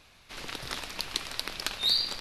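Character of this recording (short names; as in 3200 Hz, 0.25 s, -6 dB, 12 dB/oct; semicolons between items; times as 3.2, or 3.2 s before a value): noise floor -58 dBFS; spectral tilt -2.0 dB/oct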